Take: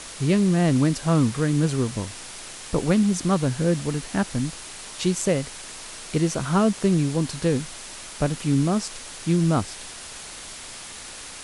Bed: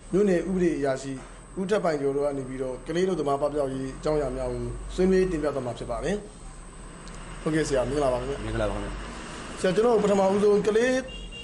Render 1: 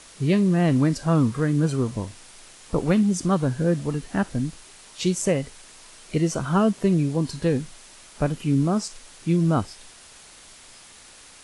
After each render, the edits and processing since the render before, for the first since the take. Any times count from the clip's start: noise print and reduce 9 dB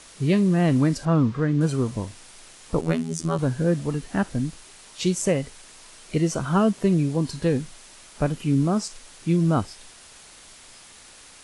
1.05–1.61 s: distance through air 130 m; 2.81–3.39 s: robot voice 81.5 Hz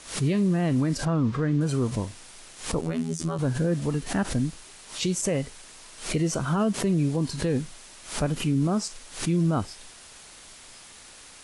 peak limiter -16 dBFS, peak gain reduction 9.5 dB; swell ahead of each attack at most 130 dB/s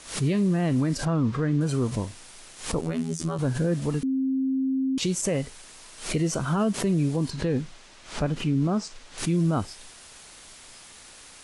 4.03–4.98 s: bleep 265 Hz -22 dBFS; 7.30–9.18 s: distance through air 82 m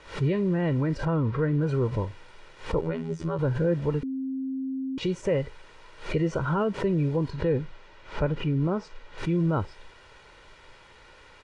low-pass 2.3 kHz 12 dB/octave; comb 2.1 ms, depth 56%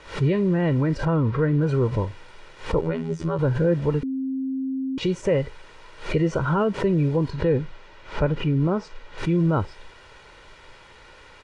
trim +4 dB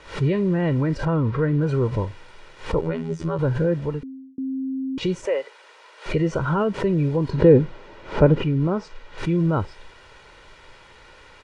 3.61–4.38 s: fade out; 5.25–6.06 s: high-pass 430 Hz 24 dB/octave; 7.29–8.43 s: peaking EQ 300 Hz +10 dB 2.9 oct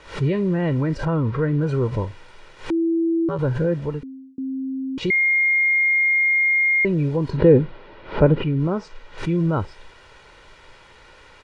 2.70–3.29 s: bleep 331 Hz -17 dBFS; 5.10–6.85 s: bleep 2.13 kHz -15 dBFS; 7.37–8.59 s: low-pass 4.5 kHz 24 dB/octave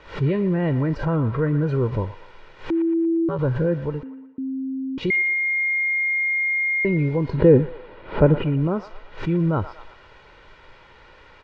distance through air 150 m; feedback echo behind a band-pass 117 ms, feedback 46%, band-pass 1.3 kHz, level -11 dB

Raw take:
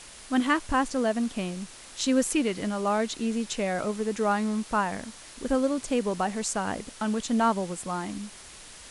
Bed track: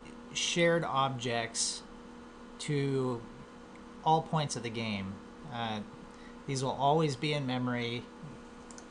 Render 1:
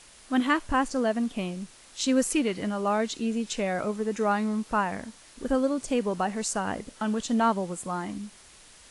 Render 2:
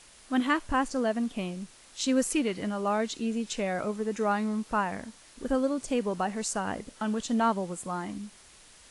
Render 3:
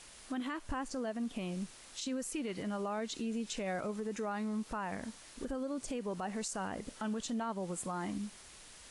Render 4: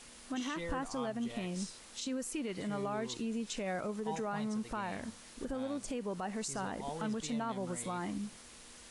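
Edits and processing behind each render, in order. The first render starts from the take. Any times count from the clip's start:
noise print and reduce 6 dB
trim -2 dB
compression 6:1, threshold -32 dBFS, peak gain reduction 11.5 dB; peak limiter -29.5 dBFS, peak gain reduction 10.5 dB
add bed track -15 dB

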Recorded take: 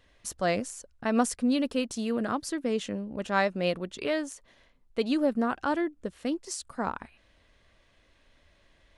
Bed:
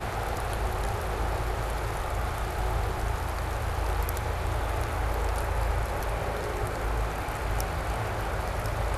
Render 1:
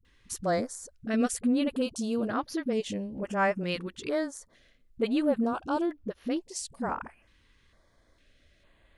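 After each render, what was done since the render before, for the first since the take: phase dispersion highs, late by 50 ms, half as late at 310 Hz; step-sequenced notch 2.2 Hz 650–8000 Hz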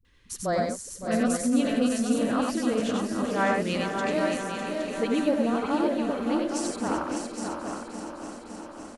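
backward echo that repeats 280 ms, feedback 83%, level -9.5 dB; multi-tap echo 83/96/603/815/867 ms -10/-3.5/-6.5/-7.5/-15 dB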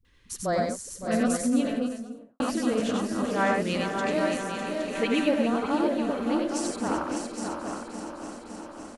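1.39–2.40 s: studio fade out; 4.95–5.48 s: peaking EQ 2.5 kHz +8 dB 1 oct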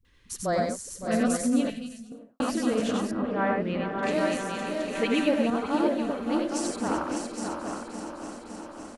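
1.70–2.12 s: high-order bell 670 Hz -15.5 dB 2.9 oct; 3.11–4.03 s: distance through air 450 m; 5.50–6.52 s: three bands expanded up and down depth 70%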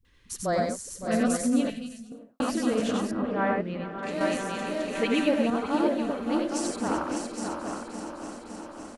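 3.61–4.21 s: feedback comb 170 Hz, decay 0.15 s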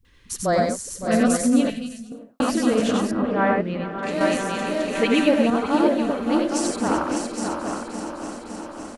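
trim +6 dB

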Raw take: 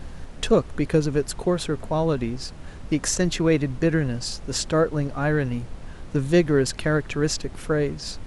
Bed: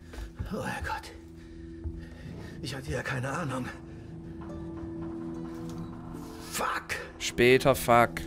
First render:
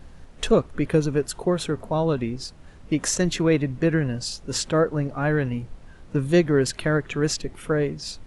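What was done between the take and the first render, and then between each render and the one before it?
noise print and reduce 8 dB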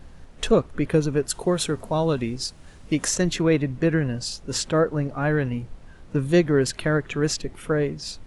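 1.30–3.05 s: treble shelf 3.8 kHz +9 dB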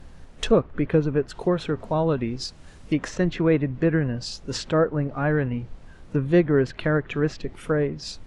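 low-pass that closes with the level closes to 2.3 kHz, closed at -20 dBFS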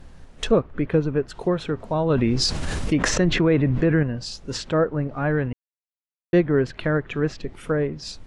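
2.10–4.03 s: level flattener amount 70%; 5.53–6.33 s: mute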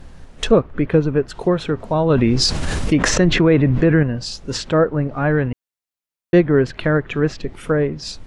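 trim +5 dB; peak limiter -2 dBFS, peak gain reduction 1 dB

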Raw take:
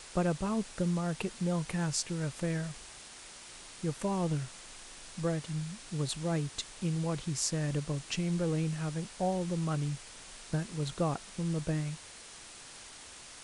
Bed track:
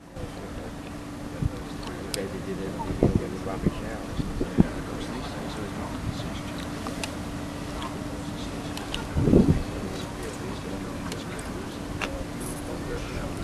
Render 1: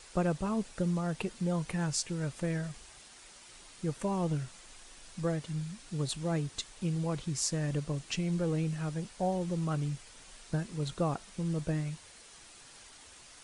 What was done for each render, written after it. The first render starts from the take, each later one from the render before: noise reduction 6 dB, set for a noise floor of -50 dBFS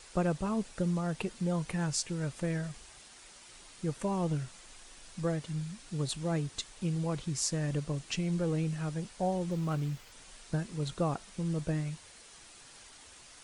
9.51–10.12 s: sliding maximum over 3 samples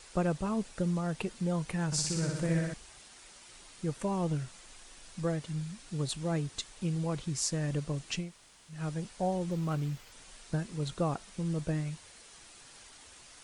1.86–2.74 s: flutter echo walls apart 10.4 m, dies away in 1.1 s; 8.24–8.76 s: room tone, crossfade 0.16 s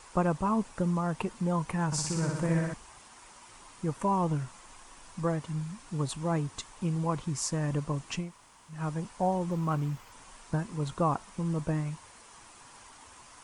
fifteen-band graphic EQ 100 Hz +5 dB, 250 Hz +4 dB, 1 kHz +12 dB, 4 kHz -5 dB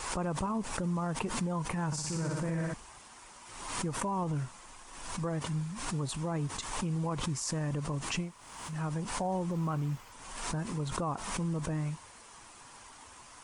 peak limiter -26 dBFS, peak gain reduction 9 dB; swell ahead of each attack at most 51 dB/s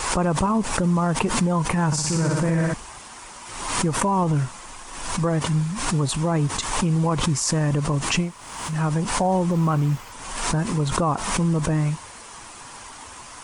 trim +12 dB

